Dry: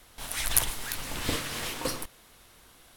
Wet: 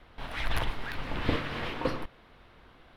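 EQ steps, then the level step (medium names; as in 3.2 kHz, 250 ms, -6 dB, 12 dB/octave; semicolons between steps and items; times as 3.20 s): distance through air 380 m; +4.0 dB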